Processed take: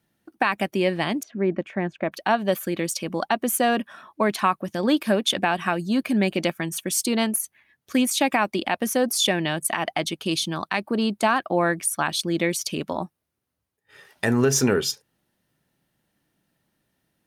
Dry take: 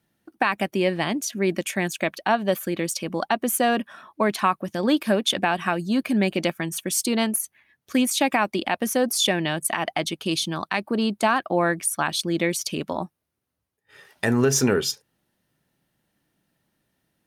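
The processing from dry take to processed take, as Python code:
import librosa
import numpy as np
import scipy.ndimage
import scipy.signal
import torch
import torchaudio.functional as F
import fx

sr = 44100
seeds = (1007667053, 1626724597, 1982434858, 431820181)

y = fx.lowpass(x, sr, hz=1400.0, slope=12, at=(1.23, 2.12))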